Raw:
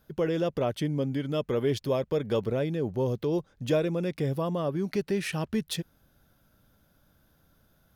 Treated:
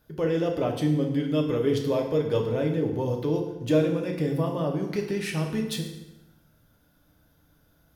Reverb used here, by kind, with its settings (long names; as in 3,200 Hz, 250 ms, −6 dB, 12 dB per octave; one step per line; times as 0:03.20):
feedback delay network reverb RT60 0.99 s, low-frequency decay 1.1×, high-frequency decay 0.85×, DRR 1 dB
level −1 dB